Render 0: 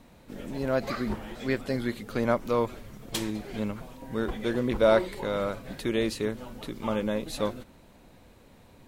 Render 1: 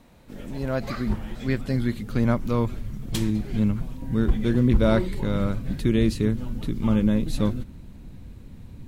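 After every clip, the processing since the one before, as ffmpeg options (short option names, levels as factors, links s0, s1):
-af "asubboost=boost=7.5:cutoff=220"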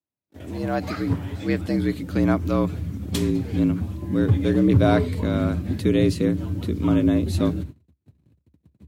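-af "agate=range=0.00631:threshold=0.0158:ratio=16:detection=peak,afreqshift=65,volume=1.19"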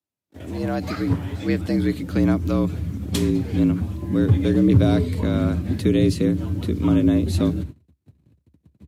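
-filter_complex "[0:a]aresample=32000,aresample=44100,acrossover=split=420|3000[s0][s1][s2];[s1]acompressor=threshold=0.0316:ratio=6[s3];[s0][s3][s2]amix=inputs=3:normalize=0,volume=1.26"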